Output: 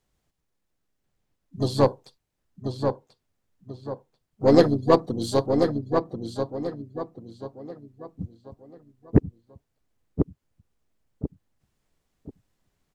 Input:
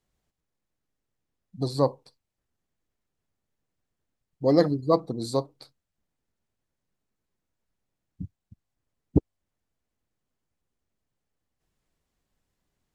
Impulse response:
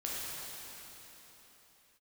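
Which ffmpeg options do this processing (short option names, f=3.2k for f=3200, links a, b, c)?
-filter_complex "[0:a]asplit=2[a][b];[b]adelay=1038,lowpass=f=3.3k:p=1,volume=-5dB,asplit=2[c][d];[d]adelay=1038,lowpass=f=3.3k:p=1,volume=0.35,asplit=2[e][f];[f]adelay=1038,lowpass=f=3.3k:p=1,volume=0.35,asplit=2[g][h];[h]adelay=1038,lowpass=f=3.3k:p=1,volume=0.35[i];[a][c][e][g][i]amix=inputs=5:normalize=0,asplit=3[j][k][l];[k]asetrate=35002,aresample=44100,atempo=1.25992,volume=-9dB[m];[l]asetrate=66075,aresample=44100,atempo=0.66742,volume=-17dB[n];[j][m][n]amix=inputs=3:normalize=0,aeval=exprs='0.531*(cos(1*acos(clip(val(0)/0.531,-1,1)))-cos(1*PI/2))+0.0211*(cos(8*acos(clip(val(0)/0.531,-1,1)))-cos(8*PI/2))':c=same,volume=3dB"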